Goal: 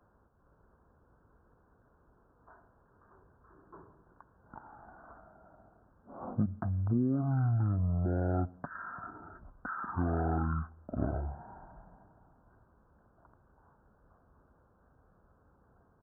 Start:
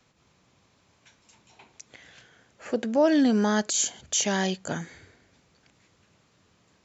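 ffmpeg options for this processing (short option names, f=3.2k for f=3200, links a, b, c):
-af "acompressor=threshold=-26dB:ratio=6,aresample=8000,aresample=44100,asetrate=18846,aresample=44100,volume=-1dB"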